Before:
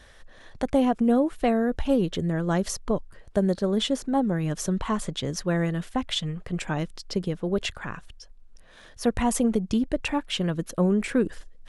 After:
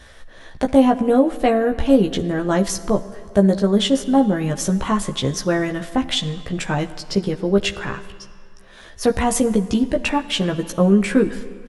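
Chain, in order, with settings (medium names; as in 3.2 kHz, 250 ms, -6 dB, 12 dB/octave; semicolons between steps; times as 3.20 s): doubling 15 ms -4 dB; on a send: reverberation RT60 2.3 s, pre-delay 24 ms, DRR 14 dB; on the sum: trim +5.5 dB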